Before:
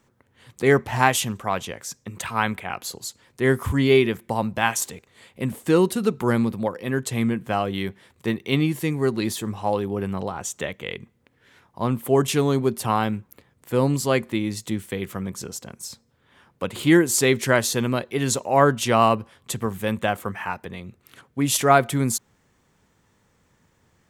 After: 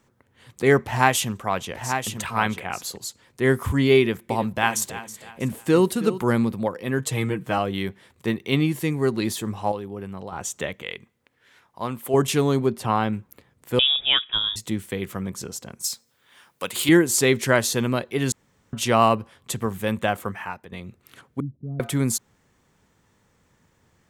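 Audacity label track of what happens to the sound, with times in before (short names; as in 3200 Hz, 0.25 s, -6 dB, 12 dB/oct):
0.810000	2.970000	echo 0.89 s -7.5 dB
3.980000	6.210000	feedback echo 0.322 s, feedback 35%, level -14 dB
6.990000	7.580000	comb 6.4 ms
9.720000	10.320000	gain -7.5 dB
10.820000	12.140000	low shelf 440 Hz -10 dB
12.660000	13.130000	high shelf 6400 Hz -11.5 dB
13.790000	14.560000	inverted band carrier 3600 Hz
15.840000	16.890000	tilt +3.5 dB/oct
18.320000	18.730000	room tone
20.250000	20.720000	fade out, to -10.5 dB
21.400000	21.800000	ladder low-pass 250 Hz, resonance 25%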